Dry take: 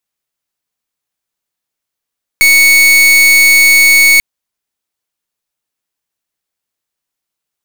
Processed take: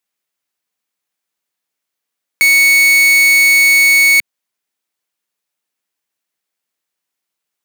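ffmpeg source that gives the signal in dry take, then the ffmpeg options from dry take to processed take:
-f lavfi -i "aevalsrc='0.501*(2*lt(mod(2220*t,1),0.41)-1)':d=1.79:s=44100"
-af "highpass=160,equalizer=f=2.1k:w=1.5:g=2.5,alimiter=limit=-6.5dB:level=0:latency=1:release=82"

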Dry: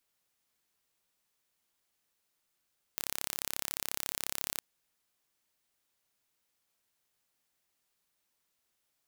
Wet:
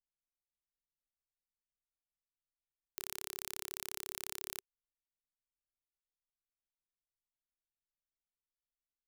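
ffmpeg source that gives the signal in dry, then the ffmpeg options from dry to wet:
-f lavfi -i "aevalsrc='0.447*eq(mod(n,1289),0)':d=1.62:s=44100"
-af "bandreject=f=390:w=12,anlmdn=0.000251,alimiter=limit=-13.5dB:level=0:latency=1"

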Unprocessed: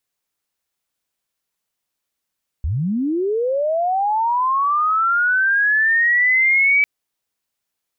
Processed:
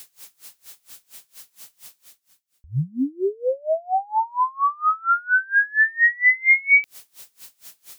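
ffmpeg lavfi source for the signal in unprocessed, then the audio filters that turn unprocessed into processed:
-f lavfi -i "aevalsrc='pow(10,(-18+6.5*t/4.2)/20)*sin(2*PI*(62*t+2238*t*t/(2*4.2)))':d=4.2:s=44100"
-af "highshelf=f=2.6k:g=10,areverse,acompressor=mode=upward:threshold=-15dB:ratio=2.5,areverse,aeval=exprs='val(0)*pow(10,-29*(0.5-0.5*cos(2*PI*4.3*n/s))/20)':c=same"

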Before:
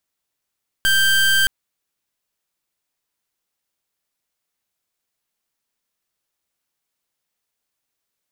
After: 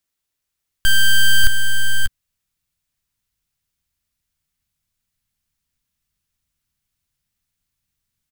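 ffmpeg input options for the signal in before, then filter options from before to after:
-f lavfi -i "aevalsrc='0.168*(2*lt(mod(1570*t,1),0.27)-1)':d=0.62:s=44100"
-filter_complex "[0:a]equalizer=f=770:w=0.87:g=-4.5,asplit=2[a][b];[b]aecho=0:1:590|602:0.473|0.126[c];[a][c]amix=inputs=2:normalize=0,asubboost=boost=10:cutoff=130"

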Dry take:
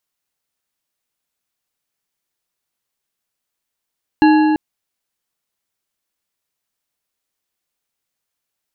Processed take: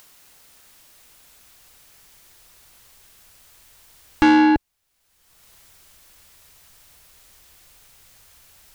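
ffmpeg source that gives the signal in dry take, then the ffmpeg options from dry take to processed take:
-f lavfi -i "aevalsrc='0.447*pow(10,-3*t/3.13)*sin(2*PI*309*t)+0.224*pow(10,-3*t/2.309)*sin(2*PI*851.9*t)+0.112*pow(10,-3*t/1.887)*sin(2*PI*1669.8*t)+0.0562*pow(10,-3*t/1.623)*sin(2*PI*2760.3*t)+0.0282*pow(10,-3*t/1.439)*sin(2*PI*4122.1*t)':d=0.34:s=44100"
-filter_complex "[0:a]asubboost=boost=5.5:cutoff=100,asplit=2[a][b];[b]acompressor=mode=upward:threshold=-25dB:ratio=2.5,volume=-3dB[c];[a][c]amix=inputs=2:normalize=0,asoftclip=type=tanh:threshold=-10dB"

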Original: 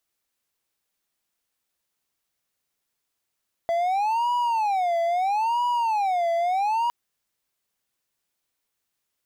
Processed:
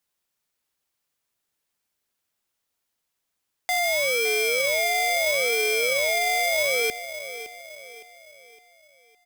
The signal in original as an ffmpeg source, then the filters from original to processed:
-f lavfi -i "aevalsrc='0.119*(1-4*abs(mod((823*t-149/(2*PI*0.76)*sin(2*PI*0.76*t))+0.25,1)-0.5))':d=3.21:s=44100"
-filter_complex "[0:a]asplit=2[a][b];[b]adelay=562,lowpass=f=1.5k:p=1,volume=-11.5dB,asplit=2[c][d];[d]adelay=562,lowpass=f=1.5k:p=1,volume=0.49,asplit=2[e][f];[f]adelay=562,lowpass=f=1.5k:p=1,volume=0.49,asplit=2[g][h];[h]adelay=562,lowpass=f=1.5k:p=1,volume=0.49,asplit=2[i][j];[j]adelay=562,lowpass=f=1.5k:p=1,volume=0.49[k];[a][c][e][g][i][k]amix=inputs=6:normalize=0,aeval=exprs='val(0)*sgn(sin(2*PI*1400*n/s))':c=same"

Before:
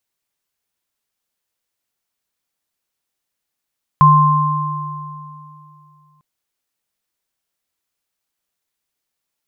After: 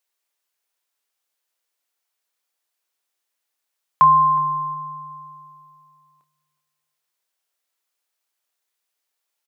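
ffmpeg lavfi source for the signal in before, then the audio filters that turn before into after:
-f lavfi -i "aevalsrc='0.355*pow(10,-3*t/2.85)*sin(2*PI*151*t)+0.501*pow(10,-3*t/2.62)*sin(2*PI*1050*t)':d=2.2:s=44100"
-filter_complex "[0:a]highpass=450,asplit=2[a][b];[b]adelay=27,volume=-10.5dB[c];[a][c]amix=inputs=2:normalize=0,asplit=2[d][e];[e]adelay=365,lowpass=f=1.3k:p=1,volume=-16dB,asplit=2[f][g];[g]adelay=365,lowpass=f=1.3k:p=1,volume=0.26,asplit=2[h][i];[i]adelay=365,lowpass=f=1.3k:p=1,volume=0.26[j];[d][f][h][j]amix=inputs=4:normalize=0"

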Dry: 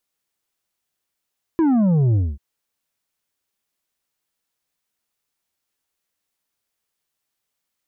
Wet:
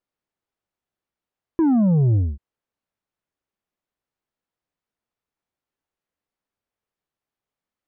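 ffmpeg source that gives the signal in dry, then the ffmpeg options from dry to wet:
-f lavfi -i "aevalsrc='0.188*clip((0.79-t)/0.23,0,1)*tanh(2.11*sin(2*PI*340*0.79/log(65/340)*(exp(log(65/340)*t/0.79)-1)))/tanh(2.11)':d=0.79:s=44100"
-af "lowpass=f=1k:p=1"

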